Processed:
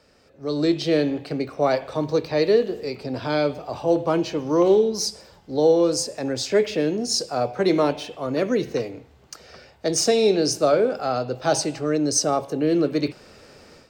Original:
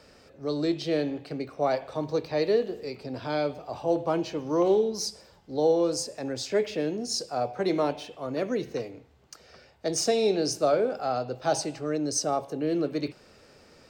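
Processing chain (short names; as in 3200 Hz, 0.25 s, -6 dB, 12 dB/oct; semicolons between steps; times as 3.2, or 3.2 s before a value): dynamic EQ 750 Hz, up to -4 dB, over -39 dBFS, Q 2.8; AGC gain up to 11.5 dB; gain -4 dB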